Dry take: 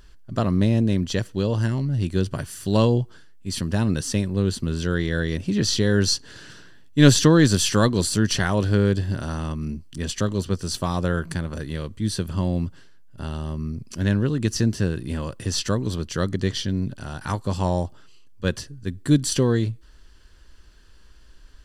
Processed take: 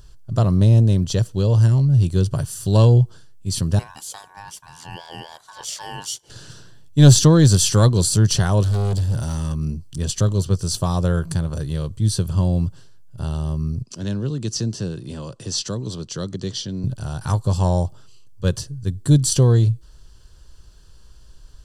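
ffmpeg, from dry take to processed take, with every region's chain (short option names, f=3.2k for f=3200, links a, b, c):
-filter_complex "[0:a]asettb=1/sr,asplit=3[a][b][c];[a]atrim=end=3.794[d];[b]atrim=start=3.79:end=6.3,asetpts=PTS-STARTPTS,afade=t=in:d=0.004:c=qsin,afade=t=out:st=2.506:d=0.004:c=qsin,highpass=650,equalizer=f=4.3k:w=0.47:g=-7.5,aeval=exprs='val(0)*sin(2*PI*1300*n/s)':c=same[e];[c]atrim=start=6.296[f];[d][e]acrossfade=d=0.004:c1=hsin:c2=qsin[g];[g][f]acrossfade=d=0.004:c1=qsin:c2=hsin,asettb=1/sr,asplit=3[h][i][j];[h]atrim=end=8.634[k];[i]atrim=start=8.63:end=9.55,asetpts=PTS-STARTPTS,afade=t=in:d=0.004:c=qsin,afade=t=out:st=0.916:d=0.004:c=qsin,highshelf=f=5.8k:g=7,volume=24dB,asoftclip=hard,volume=-24dB[l];[j]atrim=start=9.546[m];[k][l]acrossfade=d=0.004:c1=hsin:c2=qsin[n];[n][m]acrossfade=d=0.004:c1=qsin:c2=hsin,asettb=1/sr,asplit=3[o][p][q];[o]atrim=end=13.834[r];[p]atrim=start=13.83:end=16.84,asetpts=PTS-STARTPTS,afade=t=in:d=0.004:c=qsin,afade=t=out:st=3.006:d=0.004:c=qsin,acrossover=split=320|3000[s][t][u];[t]acompressor=threshold=-44dB:ratio=1.5:attack=3.2:release=140:knee=2.83:detection=peak[v];[s][v][u]amix=inputs=3:normalize=0,acrossover=split=180 8000:gain=0.141 1 0.0708[w][x][y];[w][x][y]amix=inputs=3:normalize=0[z];[q]atrim=start=16.836[aa];[r][z]acrossfade=d=0.004:c1=hsin:c2=qsin[ab];[ab][aa]acrossfade=d=0.004:c1=qsin:c2=hsin,equalizer=f=125:t=o:w=1:g=8,equalizer=f=250:t=o:w=1:g=-8,equalizer=f=2k:t=o:w=1:g=-12,equalizer=f=8k:t=o:w=1:g=3,acontrast=21,volume=-1dB"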